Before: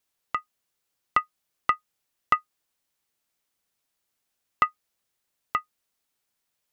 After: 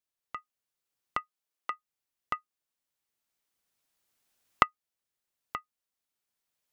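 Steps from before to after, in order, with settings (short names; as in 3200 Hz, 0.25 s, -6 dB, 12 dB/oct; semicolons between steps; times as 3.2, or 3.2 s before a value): recorder AGC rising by 7.9 dB/s; 1.2–1.7 HPF 150 Hz -> 360 Hz; gain -12.5 dB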